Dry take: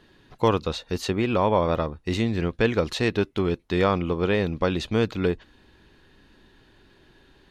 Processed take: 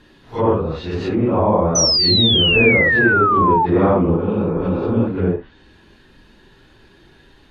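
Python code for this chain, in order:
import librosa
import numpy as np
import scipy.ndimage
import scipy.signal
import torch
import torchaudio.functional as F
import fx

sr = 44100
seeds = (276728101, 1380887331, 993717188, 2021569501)

y = fx.phase_scramble(x, sr, seeds[0], window_ms=200)
y = fx.leveller(y, sr, passes=1, at=(3.49, 4.17))
y = fx.spec_repair(y, sr, seeds[1], start_s=4.24, length_s=0.81, low_hz=240.0, high_hz=2500.0, source='before')
y = fx.env_lowpass_down(y, sr, base_hz=990.0, full_db=-22.0)
y = fx.spec_paint(y, sr, seeds[2], shape='fall', start_s=1.75, length_s=1.91, low_hz=850.0, high_hz=6100.0, level_db=-22.0)
y = y * librosa.db_to_amplitude(6.5)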